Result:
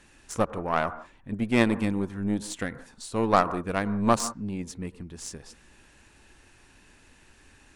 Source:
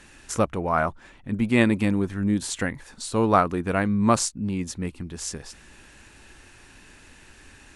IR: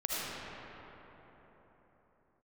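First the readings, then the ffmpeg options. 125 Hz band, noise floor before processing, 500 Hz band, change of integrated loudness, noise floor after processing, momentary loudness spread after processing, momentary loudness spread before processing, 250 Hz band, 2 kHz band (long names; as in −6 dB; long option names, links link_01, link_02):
−5.5 dB, −51 dBFS, −2.5 dB, −3.5 dB, −57 dBFS, 16 LU, 13 LU, −4.0 dB, −3.5 dB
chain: -filter_complex "[0:a]aeval=exprs='0.631*(cos(1*acos(clip(val(0)/0.631,-1,1)))-cos(1*PI/2))+0.0224*(cos(3*acos(clip(val(0)/0.631,-1,1)))-cos(3*PI/2))+0.0501*(cos(6*acos(clip(val(0)/0.631,-1,1)))-cos(6*PI/2))+0.0316*(cos(7*acos(clip(val(0)/0.631,-1,1)))-cos(7*PI/2))+0.0141*(cos(8*acos(clip(val(0)/0.631,-1,1)))-cos(8*PI/2))':channel_layout=same,asplit=2[link_01][link_02];[link_02]lowpass=frequency=1200:width_type=q:width=2[link_03];[1:a]atrim=start_sample=2205,atrim=end_sample=6174,asetrate=32634,aresample=44100[link_04];[link_03][link_04]afir=irnorm=-1:irlink=0,volume=-19.5dB[link_05];[link_01][link_05]amix=inputs=2:normalize=0,volume=-1.5dB"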